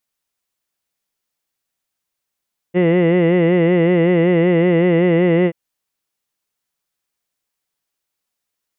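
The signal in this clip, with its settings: formant vowel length 2.78 s, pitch 173 Hz, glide 0 st, F1 440 Hz, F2 2000 Hz, F3 2800 Hz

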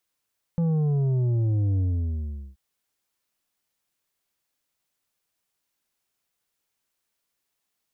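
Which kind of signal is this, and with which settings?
sub drop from 170 Hz, over 1.98 s, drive 7 dB, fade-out 0.78 s, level -21 dB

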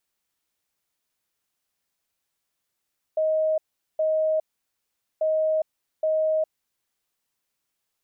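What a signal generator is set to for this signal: beep pattern sine 628 Hz, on 0.41 s, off 0.41 s, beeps 2, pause 0.81 s, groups 2, -19.5 dBFS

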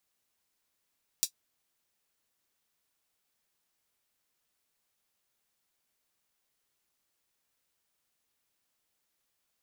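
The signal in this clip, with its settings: closed hi-hat, high-pass 4800 Hz, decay 0.09 s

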